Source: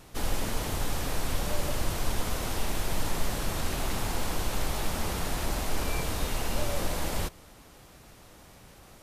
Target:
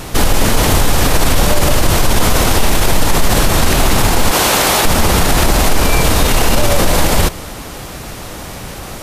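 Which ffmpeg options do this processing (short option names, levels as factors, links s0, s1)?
-filter_complex "[0:a]asettb=1/sr,asplit=3[s0][s1][s2];[s0]atrim=end=4.314[s3];[s1]atrim=start=4.31:end=4.85,asetpts=PTS-STARTPTS,afade=t=in:d=0.004:c=qsin,afade=t=out:st=0.536:d=0.004:c=qsin,highpass=f=440:p=1[s4];[s2]atrim=start=4.846[s5];[s3][s4]acrossfade=d=0.004:c1=hsin:c2=qsin[s6];[s6][s5]acrossfade=d=0.004:c1=qsin:c2=hsin,alimiter=level_in=18.8:limit=0.891:release=50:level=0:latency=1,volume=0.891"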